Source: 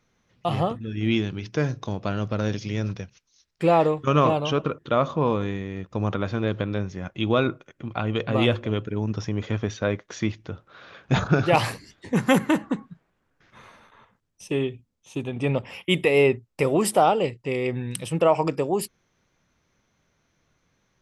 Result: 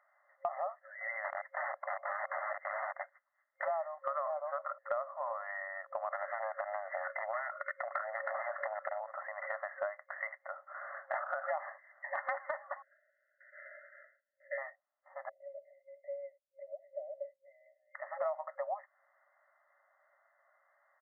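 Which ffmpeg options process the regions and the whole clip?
-filter_complex "[0:a]asettb=1/sr,asplit=3[a][b][c];[a]atrim=end=1.244[d];[b]atrim=start=1.24:end=3.65,asetpts=PTS-STARTPTS,afade=t=in:d=0.004:c=qsin,afade=t=out:st=2.406:d=0.004:c=qsin,highpass=59,aeval=exprs='(mod(21.1*val(0)+1,2)-1)/21.1':c=same[e];[c]atrim=start=3.646[f];[d][e]acrossfade=d=0.004:c1=hsin:c2=qsin[g];[g][f]acrossfade=d=0.004:c1=qsin:c2=hsin,asettb=1/sr,asplit=3[h][i][j];[h]atrim=end=6.114[k];[i]atrim=start=6.11:end=9.01,asetpts=PTS-STARTPTS,afade=t=in:d=0.004:c=qsin,afade=t=out:st=2.896:d=0.004:c=qsin,asuperstop=centerf=800:order=4:qfactor=1.3,acompressor=threshold=-34dB:ratio=12:attack=3.2:release=140:knee=1:detection=peak,aeval=exprs='0.0794*sin(PI/2*4.47*val(0)/0.0794)':c=same[l];[j]atrim=start=9.006[m];[k][l]acrossfade=d=0.004:c1=hsin:c2=qsin[n];[n][m]acrossfade=d=0.004:c1=qsin:c2=hsin,asettb=1/sr,asplit=3[o][p][q];[o]atrim=end=12.824[r];[p]atrim=start=12.82:end=14.58,asetpts=PTS-STARTPTS,afade=t=in:d=0.004:c=qsin,afade=t=out:st=1.756:d=0.004:c=qsin,asuperstop=centerf=950:order=12:qfactor=1.2,asplit=2[s][t];[t]adelay=35,volume=-9dB[u];[s][u]amix=inputs=2:normalize=0,atrim=end_sample=77616[v];[q]atrim=start=14.576[w];[r][v]acrossfade=d=0.004:c1=hsin:c2=qsin[x];[x][w]acrossfade=d=0.004:c1=qsin:c2=hsin,asettb=1/sr,asplit=3[y][z][aa];[y]atrim=end=15.294[ab];[z]atrim=start=15.29:end=17.95,asetpts=PTS-STARTPTS,afade=t=in:d=0.004:c=qsin,afade=t=out:st=2.656:d=0.004:c=qsin,acompressor=threshold=-26dB:ratio=4:attack=3.2:release=140:knee=1:detection=peak,asuperstop=centerf=1200:order=12:qfactor=0.53[ac];[aa]atrim=start=17.946[ad];[ab][ac]acrossfade=d=0.004:c1=hsin:c2=qsin[ae];[ae][ad]acrossfade=d=0.004:c1=qsin:c2=hsin,afftfilt=real='re*between(b*sr/4096,540,2100)':imag='im*between(b*sr/4096,540,2100)':win_size=4096:overlap=0.75,aecho=1:1:1.6:0.37,acompressor=threshold=-37dB:ratio=8,volume=3dB"

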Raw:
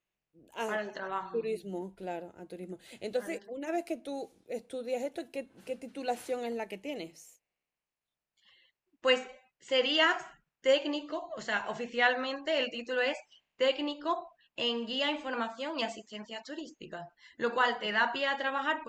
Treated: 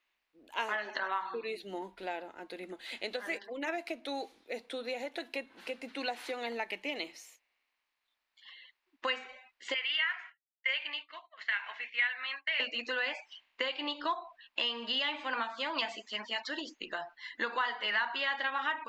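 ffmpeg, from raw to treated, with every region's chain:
-filter_complex "[0:a]asettb=1/sr,asplit=3[a][b][c];[a]atrim=end=9.744[d];[b]atrim=start=9.74:end=12.6,asetpts=PTS-STARTPTS,afade=t=in:d=0.004:c=qsin,afade=t=out:st=2.856:d=0.004:c=qsin,bandpass=f=2.2k:t=q:w=2.9,agate=range=-33dB:threshold=-54dB:ratio=3:release=100:detection=peak[e];[c]atrim=start=12.596[f];[d][e]acrossfade=d=0.004:c1=hsin:c2=qsin[g];[g][f]acrossfade=d=0.004:c1=qsin:c2=hsin,equalizer=f=160:w=0.59:g=-14.5,acompressor=threshold=-40dB:ratio=6,equalizer=f=125:t=o:w=1:g=-7,equalizer=f=250:t=o:w=1:g=11,equalizer=f=1k:t=o:w=1:g=9,equalizer=f=2k:t=o:w=1:g=9,equalizer=f=4k:t=o:w=1:g=10,equalizer=f=8k:t=o:w=1:g=-4"

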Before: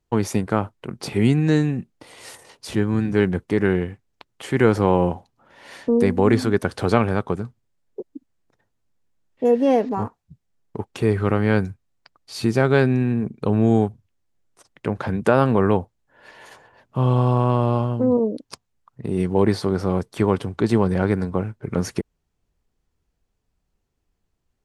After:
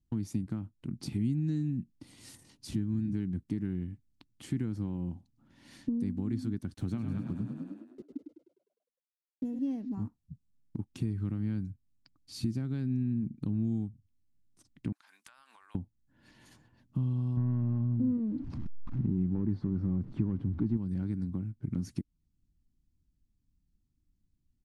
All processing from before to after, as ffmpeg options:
-filter_complex "[0:a]asettb=1/sr,asplit=3[a][b][c];[a]atrim=end=6.744[d];[b]atrim=start=6.74:end=9.59,asetpts=PTS-STARTPTS,afade=t=in:d=0.004:c=qsin,afade=t=out:st=2.846:d=0.004:c=qsin,bandreject=f=4.8k:w=5.3,aeval=exprs='sgn(val(0))*max(abs(val(0))-0.00447,0)':c=same,asplit=9[e][f][g][h][i][j][k][l][m];[f]adelay=102,afreqshift=30,volume=-7dB[n];[g]adelay=204,afreqshift=60,volume=-11.3dB[o];[h]adelay=306,afreqshift=90,volume=-15.6dB[p];[i]adelay=408,afreqshift=120,volume=-19.9dB[q];[j]adelay=510,afreqshift=150,volume=-24.2dB[r];[k]adelay=612,afreqshift=180,volume=-28.5dB[s];[l]adelay=714,afreqshift=210,volume=-32.8dB[t];[m]adelay=816,afreqshift=240,volume=-37.1dB[u];[e][n][o][p][q][r][s][t][u]amix=inputs=9:normalize=0,atrim=end_sample=125685[v];[c]atrim=start=9.586[w];[d][v]acrossfade=d=0.004:c1=hsin:c2=qsin[x];[x][w]acrossfade=d=0.004:c1=qsin:c2=hsin,asettb=1/sr,asplit=3[y][z][aa];[y]atrim=end=14.924[ab];[z]atrim=start=14.92:end=15.75,asetpts=PTS-STARTPTS,afade=t=in:d=0.004:c=qsin,afade=t=out:st=0.826:d=0.004:c=qsin,highpass=f=980:w=0.5412,highpass=f=980:w=1.3066,highshelf=f=9k:g=9,acompressor=threshold=-35dB:ratio=16:attack=3.2:release=140:knee=1:detection=peak[ac];[aa]atrim=start=15.746[ad];[ab][ac]acrossfade=d=0.004:c1=hsin:c2=qsin[ae];[ae][ad]acrossfade=d=0.004:c1=qsin:c2=hsin,asettb=1/sr,asplit=3[af][ag][ah];[af]atrim=end=17.374[ai];[ag]atrim=start=17.37:end=20.77,asetpts=PTS-STARTPTS,afade=t=in:d=0.004:c=qsin,afade=t=out:st=3.396:d=0.004:c=qsin,aeval=exprs='val(0)+0.5*0.0251*sgn(val(0))':c=same,lowpass=1.4k,acontrast=82[aj];[ah]atrim=start=20.766[ak];[ai][aj]acrossfade=d=0.004:c1=hsin:c2=qsin[al];[al][ak]acrossfade=d=0.004:c1=qsin:c2=hsin,acompressor=threshold=-30dB:ratio=3,firequalizer=gain_entry='entry(290,0);entry(430,-22);entry(4400,-10)':delay=0.05:min_phase=1"

